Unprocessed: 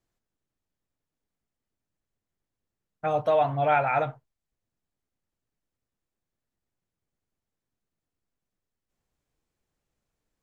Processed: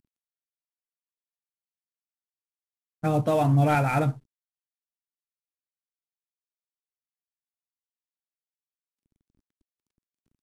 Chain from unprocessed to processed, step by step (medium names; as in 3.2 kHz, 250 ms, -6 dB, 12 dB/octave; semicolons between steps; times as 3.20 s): CVSD coder 64 kbps; resonant low shelf 410 Hz +11 dB, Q 1.5